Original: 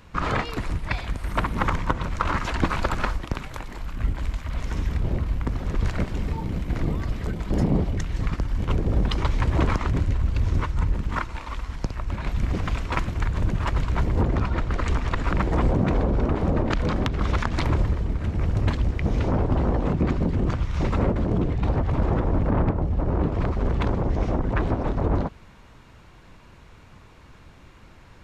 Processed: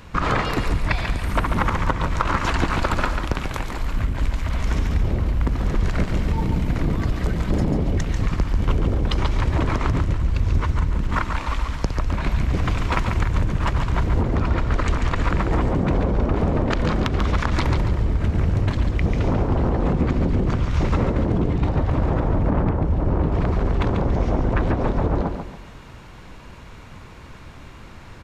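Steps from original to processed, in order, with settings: compression, threshold -24 dBFS, peak gain reduction 9 dB; feedback delay 141 ms, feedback 35%, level -6.5 dB; trim +7 dB

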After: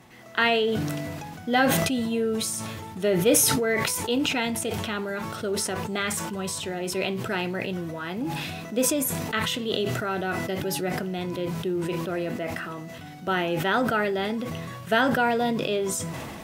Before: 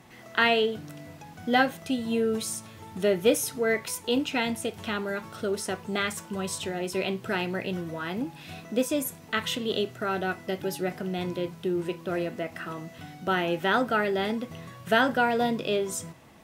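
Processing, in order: decay stretcher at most 24 dB/s

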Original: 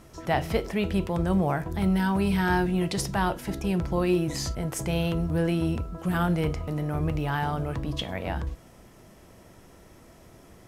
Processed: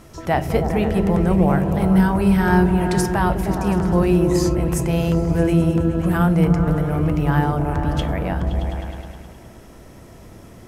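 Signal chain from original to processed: delay with an opening low-pass 104 ms, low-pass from 200 Hz, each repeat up 1 oct, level 0 dB; dynamic bell 3.7 kHz, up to -7 dB, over -49 dBFS, Q 1.1; trim +6 dB

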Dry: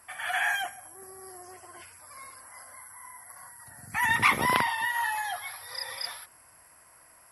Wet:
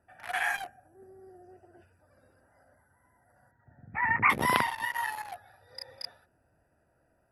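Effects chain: local Wiener filter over 41 samples; 3.51–4.30 s: elliptic low-pass 2.3 kHz, stop band 40 dB

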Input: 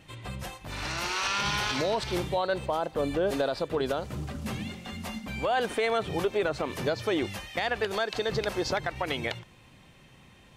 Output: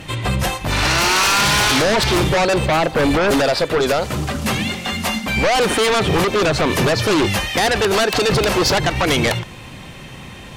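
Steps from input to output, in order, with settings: 3.42–5.37 s: bass shelf 430 Hz -8 dB; in parallel at -4 dB: sine folder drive 11 dB, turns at -18 dBFS; on the sum: trim +6.5 dB

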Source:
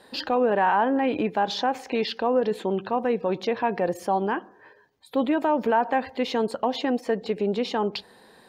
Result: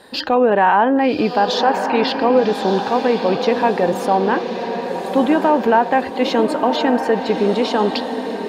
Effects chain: on a send: echo that smears into a reverb 1173 ms, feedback 51%, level -7 dB; on the sum: trim +7.5 dB

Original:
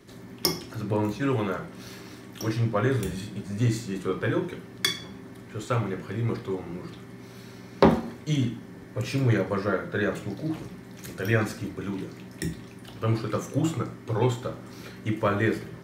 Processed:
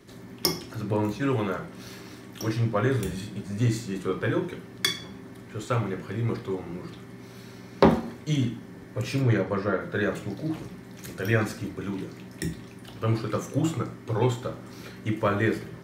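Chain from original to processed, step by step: 9.21–9.80 s: treble shelf 7.6 kHz -> 5.1 kHz -9 dB

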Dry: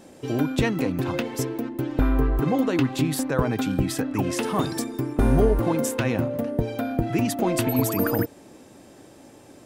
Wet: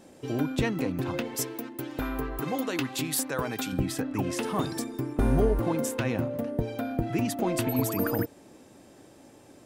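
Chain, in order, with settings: 1.36–3.73 s: tilt EQ +2.5 dB/octave; trim -4.5 dB

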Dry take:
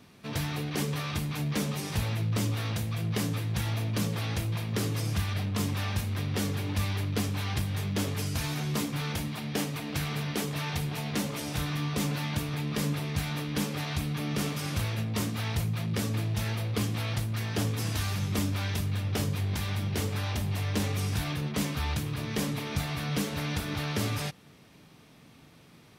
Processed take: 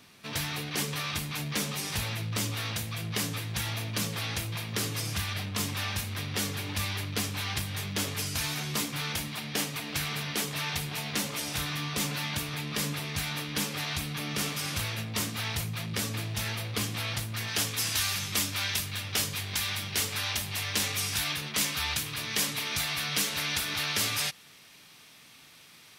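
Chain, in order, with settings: tilt shelf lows -5.5 dB, from 17.47 s lows -10 dB

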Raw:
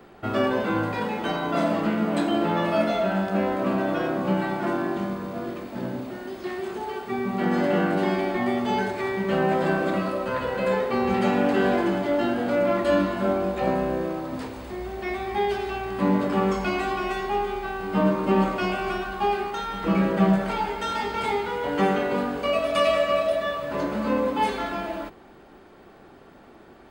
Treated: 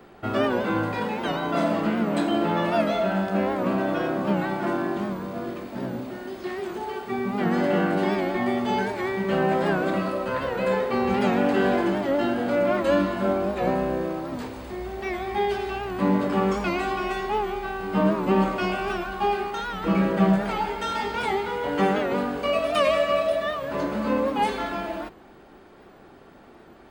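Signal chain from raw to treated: warped record 78 rpm, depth 100 cents

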